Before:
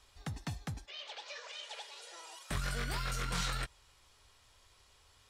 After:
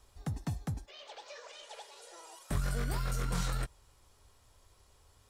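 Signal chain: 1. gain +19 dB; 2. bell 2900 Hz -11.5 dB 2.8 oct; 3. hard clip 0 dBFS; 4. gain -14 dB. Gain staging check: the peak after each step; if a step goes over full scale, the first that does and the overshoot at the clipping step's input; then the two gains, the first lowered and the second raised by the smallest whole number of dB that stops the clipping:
-4.0, -5.5, -5.5, -19.5 dBFS; no overload

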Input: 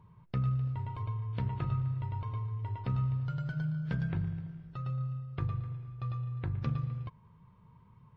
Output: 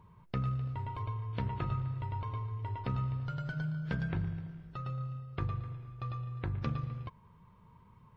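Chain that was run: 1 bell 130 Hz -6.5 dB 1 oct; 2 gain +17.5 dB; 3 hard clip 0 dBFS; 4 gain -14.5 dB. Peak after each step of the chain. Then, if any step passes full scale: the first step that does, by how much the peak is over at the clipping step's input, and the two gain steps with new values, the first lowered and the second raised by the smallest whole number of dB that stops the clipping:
-23.0, -5.5, -5.5, -20.0 dBFS; no overload

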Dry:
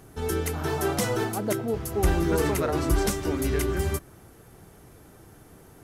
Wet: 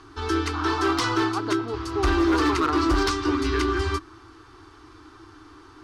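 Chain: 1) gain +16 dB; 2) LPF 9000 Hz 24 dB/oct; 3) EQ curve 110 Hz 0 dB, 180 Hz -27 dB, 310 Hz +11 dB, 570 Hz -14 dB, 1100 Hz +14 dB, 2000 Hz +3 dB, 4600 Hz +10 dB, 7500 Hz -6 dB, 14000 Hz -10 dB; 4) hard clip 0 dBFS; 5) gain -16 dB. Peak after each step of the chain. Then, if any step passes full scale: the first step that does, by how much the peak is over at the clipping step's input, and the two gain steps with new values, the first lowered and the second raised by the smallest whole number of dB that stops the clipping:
+3.5, +3.5, +9.0, 0.0, -16.0 dBFS; step 1, 9.0 dB; step 1 +7 dB, step 5 -7 dB

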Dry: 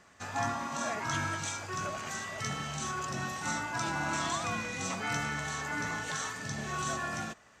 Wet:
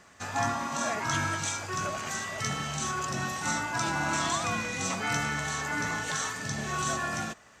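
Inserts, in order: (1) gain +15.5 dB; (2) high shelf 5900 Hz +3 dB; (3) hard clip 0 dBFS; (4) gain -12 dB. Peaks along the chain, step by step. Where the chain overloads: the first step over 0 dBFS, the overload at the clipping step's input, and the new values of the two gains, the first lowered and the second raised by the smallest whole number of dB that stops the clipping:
-4.5, -4.0, -4.0, -16.0 dBFS; no overload

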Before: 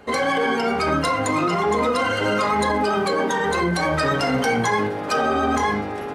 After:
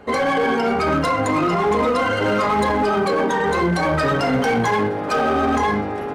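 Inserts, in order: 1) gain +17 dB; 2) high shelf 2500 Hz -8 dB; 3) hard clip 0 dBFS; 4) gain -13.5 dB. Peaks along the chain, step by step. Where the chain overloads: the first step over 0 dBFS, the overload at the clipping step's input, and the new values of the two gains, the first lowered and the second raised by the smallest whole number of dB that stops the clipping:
+7.5, +6.5, 0.0, -13.5 dBFS; step 1, 6.5 dB; step 1 +10 dB, step 4 -6.5 dB

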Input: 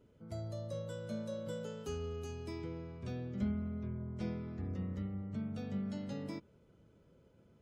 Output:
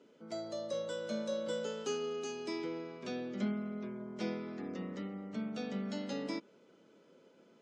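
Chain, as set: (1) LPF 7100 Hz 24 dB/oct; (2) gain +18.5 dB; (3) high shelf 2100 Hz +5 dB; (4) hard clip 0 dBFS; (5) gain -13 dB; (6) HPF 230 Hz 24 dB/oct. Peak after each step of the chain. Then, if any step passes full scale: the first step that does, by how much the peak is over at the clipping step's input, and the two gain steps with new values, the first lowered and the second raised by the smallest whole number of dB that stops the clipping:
-23.0, -4.5, -4.5, -4.5, -17.5, -23.5 dBFS; no overload

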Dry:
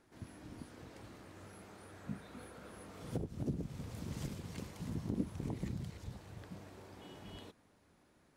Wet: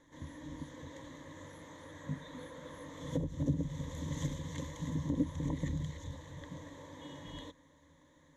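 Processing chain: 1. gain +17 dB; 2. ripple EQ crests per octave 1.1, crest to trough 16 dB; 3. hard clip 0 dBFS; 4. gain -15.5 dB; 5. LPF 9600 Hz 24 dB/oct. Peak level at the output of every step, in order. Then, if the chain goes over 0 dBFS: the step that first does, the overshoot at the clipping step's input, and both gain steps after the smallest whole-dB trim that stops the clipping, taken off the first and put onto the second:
-6.0, -4.0, -4.0, -19.5, -19.5 dBFS; no overload

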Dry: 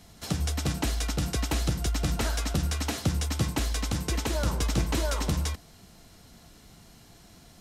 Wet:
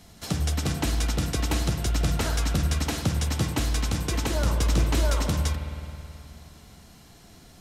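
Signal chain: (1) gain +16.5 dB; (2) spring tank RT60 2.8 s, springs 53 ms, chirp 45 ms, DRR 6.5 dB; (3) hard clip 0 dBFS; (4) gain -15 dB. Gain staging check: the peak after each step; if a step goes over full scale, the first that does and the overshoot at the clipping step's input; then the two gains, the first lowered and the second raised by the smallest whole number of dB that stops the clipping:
+2.0, +3.5, 0.0, -15.0 dBFS; step 1, 3.5 dB; step 1 +12.5 dB, step 4 -11 dB

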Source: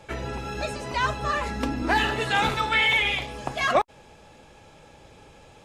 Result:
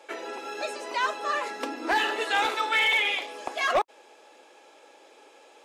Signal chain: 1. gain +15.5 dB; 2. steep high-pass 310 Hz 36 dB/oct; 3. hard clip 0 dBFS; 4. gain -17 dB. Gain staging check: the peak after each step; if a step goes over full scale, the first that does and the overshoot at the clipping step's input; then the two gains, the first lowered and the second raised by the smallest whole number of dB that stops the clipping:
+5.5, +6.5, 0.0, -17.0 dBFS; step 1, 6.5 dB; step 1 +8.5 dB, step 4 -10 dB

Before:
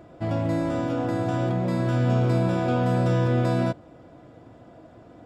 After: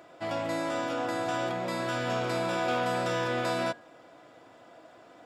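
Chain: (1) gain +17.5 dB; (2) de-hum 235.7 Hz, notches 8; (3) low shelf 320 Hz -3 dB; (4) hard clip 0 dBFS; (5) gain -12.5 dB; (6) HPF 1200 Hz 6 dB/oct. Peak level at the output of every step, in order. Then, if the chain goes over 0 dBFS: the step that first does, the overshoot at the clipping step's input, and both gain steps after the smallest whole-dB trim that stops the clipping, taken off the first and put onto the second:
+6.0, +6.0, +4.5, 0.0, -12.5, -16.5 dBFS; step 1, 4.5 dB; step 1 +12.5 dB, step 5 -7.5 dB

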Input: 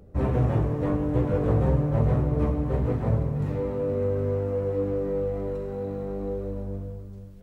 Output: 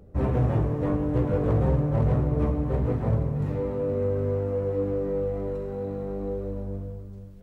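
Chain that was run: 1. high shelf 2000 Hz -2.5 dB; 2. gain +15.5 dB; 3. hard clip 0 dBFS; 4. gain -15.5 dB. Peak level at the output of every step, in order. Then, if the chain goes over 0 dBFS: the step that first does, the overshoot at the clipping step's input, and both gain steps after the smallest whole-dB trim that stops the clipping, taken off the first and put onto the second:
-11.0, +4.5, 0.0, -15.5 dBFS; step 2, 4.5 dB; step 2 +10.5 dB, step 4 -10.5 dB

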